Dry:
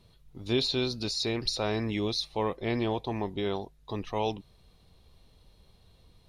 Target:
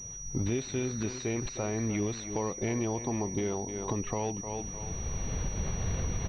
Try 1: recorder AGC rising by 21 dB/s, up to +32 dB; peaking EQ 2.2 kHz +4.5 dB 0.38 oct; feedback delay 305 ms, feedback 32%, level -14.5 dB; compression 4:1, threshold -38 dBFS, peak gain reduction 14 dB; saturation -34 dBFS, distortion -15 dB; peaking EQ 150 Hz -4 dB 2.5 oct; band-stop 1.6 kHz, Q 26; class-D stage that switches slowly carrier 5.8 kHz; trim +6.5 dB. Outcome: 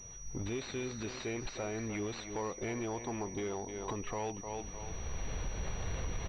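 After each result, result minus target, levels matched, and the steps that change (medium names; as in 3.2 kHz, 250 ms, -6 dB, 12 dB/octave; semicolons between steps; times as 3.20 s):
saturation: distortion +11 dB; 125 Hz band -2.0 dB
change: saturation -26.5 dBFS, distortion -26 dB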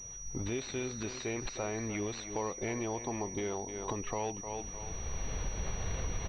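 125 Hz band -3.0 dB
change: second peaking EQ 150 Hz +4.5 dB 2.5 oct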